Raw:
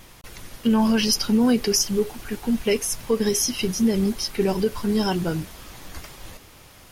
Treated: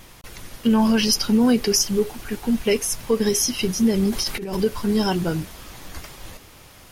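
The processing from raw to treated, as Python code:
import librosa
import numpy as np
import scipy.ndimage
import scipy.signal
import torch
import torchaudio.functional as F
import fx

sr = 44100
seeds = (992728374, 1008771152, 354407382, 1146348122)

y = fx.over_compress(x, sr, threshold_db=-29.0, ratio=-1.0, at=(4.11, 4.57), fade=0.02)
y = y * 10.0 ** (1.5 / 20.0)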